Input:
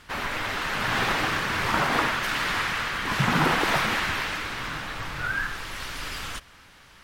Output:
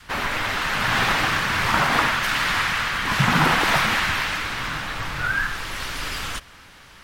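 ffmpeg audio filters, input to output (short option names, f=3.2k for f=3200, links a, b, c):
-af "adynamicequalizer=threshold=0.00708:dfrequency=390:dqfactor=1.1:tfrequency=390:tqfactor=1.1:attack=5:release=100:ratio=0.375:range=3:mode=cutabove:tftype=bell,volume=5dB"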